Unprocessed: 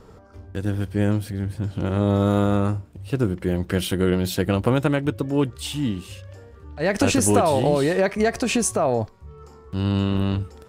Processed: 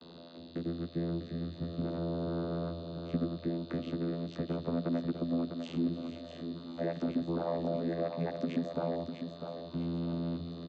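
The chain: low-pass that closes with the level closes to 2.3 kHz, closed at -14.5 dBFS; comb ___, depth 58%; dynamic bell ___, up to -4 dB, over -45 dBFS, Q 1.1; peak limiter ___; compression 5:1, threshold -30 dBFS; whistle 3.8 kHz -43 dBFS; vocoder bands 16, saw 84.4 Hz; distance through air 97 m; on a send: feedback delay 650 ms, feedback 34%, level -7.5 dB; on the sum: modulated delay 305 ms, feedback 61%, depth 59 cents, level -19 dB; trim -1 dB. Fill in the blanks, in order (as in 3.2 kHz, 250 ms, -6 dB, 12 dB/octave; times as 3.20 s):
3.4 ms, 3.4 kHz, -8 dBFS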